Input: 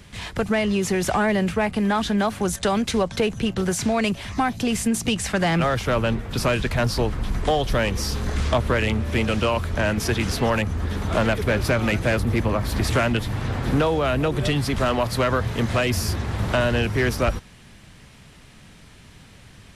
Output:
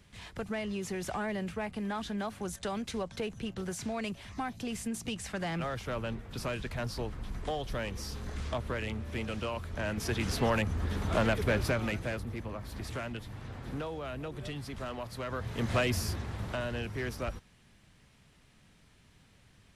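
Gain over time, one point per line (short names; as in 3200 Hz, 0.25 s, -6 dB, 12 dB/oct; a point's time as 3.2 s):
9.67 s -14 dB
10.41 s -7 dB
11.55 s -7 dB
12.36 s -17.5 dB
15.21 s -17.5 dB
15.78 s -6.5 dB
16.57 s -14.5 dB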